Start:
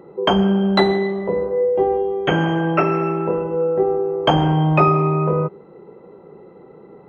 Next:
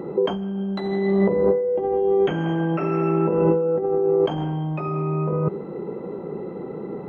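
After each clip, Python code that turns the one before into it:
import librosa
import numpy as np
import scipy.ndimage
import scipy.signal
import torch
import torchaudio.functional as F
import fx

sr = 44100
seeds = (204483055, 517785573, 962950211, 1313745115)

y = fx.peak_eq(x, sr, hz=230.0, db=7.0, octaves=1.7)
y = fx.over_compress(y, sr, threshold_db=-22.0, ratio=-1.0)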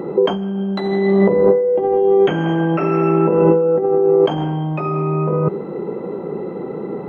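y = fx.low_shelf(x, sr, hz=82.0, db=-10.0)
y = y * librosa.db_to_amplitude(6.5)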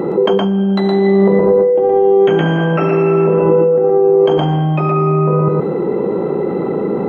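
y = x + 10.0 ** (-3.0 / 20.0) * np.pad(x, (int(117 * sr / 1000.0), 0))[:len(x)]
y = fx.env_flatten(y, sr, amount_pct=50)
y = y * librosa.db_to_amplitude(-2.0)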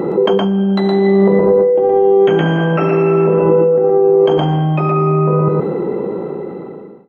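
y = fx.fade_out_tail(x, sr, length_s=1.49)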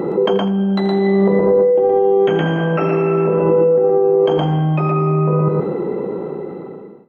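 y = x + 10.0 ** (-14.0 / 20.0) * np.pad(x, (int(83 * sr / 1000.0), 0))[:len(x)]
y = y * librosa.db_to_amplitude(-2.5)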